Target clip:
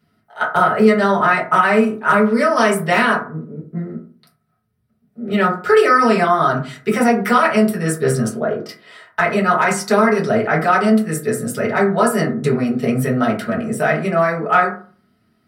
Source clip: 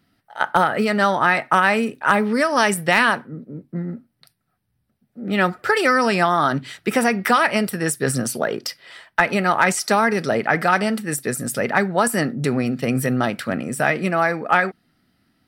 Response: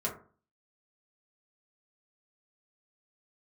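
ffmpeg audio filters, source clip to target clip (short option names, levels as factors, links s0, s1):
-filter_complex "[0:a]asettb=1/sr,asplit=3[s0][s1][s2];[s0]atrim=end=8.294[s3];[s1]atrim=start=8.29:end=8.69,asetpts=PTS-STARTPTS,afade=t=in:d=0.004:c=qsin,afade=t=out:st=0.396:d=0.004:c=qsin,lowpass=f=1100:p=1[s4];[s2]atrim=start=8.686[s5];[s3][s4]acrossfade=d=0.004:c1=hsin:c2=qsin[s6];[s6][s5]acrossfade=d=0.004:c1=qsin:c2=hsin[s7];[1:a]atrim=start_sample=2205[s8];[s7][s8]afir=irnorm=-1:irlink=0,volume=0.708"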